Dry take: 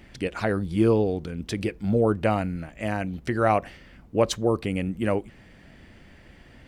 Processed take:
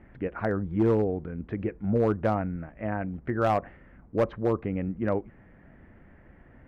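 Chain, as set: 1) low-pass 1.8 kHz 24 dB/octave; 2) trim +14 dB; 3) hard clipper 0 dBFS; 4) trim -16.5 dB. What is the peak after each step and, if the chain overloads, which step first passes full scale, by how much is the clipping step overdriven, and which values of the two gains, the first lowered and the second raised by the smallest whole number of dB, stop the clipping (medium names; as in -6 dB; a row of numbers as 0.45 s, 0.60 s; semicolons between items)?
-8.0 dBFS, +6.0 dBFS, 0.0 dBFS, -16.5 dBFS; step 2, 6.0 dB; step 2 +8 dB, step 4 -10.5 dB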